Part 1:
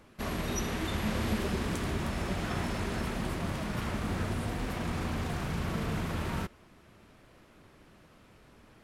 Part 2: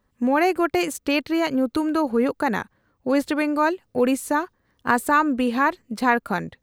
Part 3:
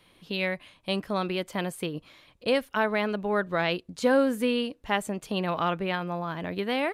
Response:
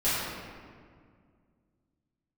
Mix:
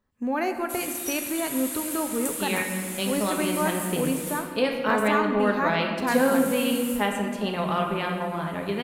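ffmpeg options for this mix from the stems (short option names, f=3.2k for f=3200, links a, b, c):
-filter_complex "[0:a]aexciter=amount=9.4:drive=6.6:freq=7.6k,bandpass=f=7.6k:t=q:w=0.52:csg=0,adelay=500,volume=-6.5dB,asplit=3[a][b][c];[a]atrim=end=4.39,asetpts=PTS-STARTPTS,afade=t=out:st=4.386:d=0.004:c=hsin[d];[b]atrim=start=4.39:end=6.07,asetpts=PTS-STARTPTS,volume=0[e];[c]atrim=start=6.07,asetpts=PTS-STARTPTS,afade=t=in:d=0.004:c=hsin[f];[d][e][f]concat=n=3:v=0:a=1,asplit=2[g][h];[h]volume=-4.5dB[i];[1:a]volume=-8.5dB,asplit=2[j][k];[k]volume=-18dB[l];[2:a]adelay=2100,volume=-2.5dB,asplit=2[m][n];[n]volume=-11.5dB[o];[3:a]atrim=start_sample=2205[p];[i][l][o]amix=inputs=3:normalize=0[q];[q][p]afir=irnorm=-1:irlink=0[r];[g][j][m][r]amix=inputs=4:normalize=0"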